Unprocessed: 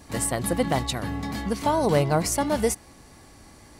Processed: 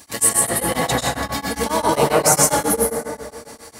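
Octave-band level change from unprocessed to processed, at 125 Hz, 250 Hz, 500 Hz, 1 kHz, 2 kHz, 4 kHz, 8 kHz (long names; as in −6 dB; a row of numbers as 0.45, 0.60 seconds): 0.0, +1.5, +5.0, +7.0, +8.5, +8.0, +13.0 decibels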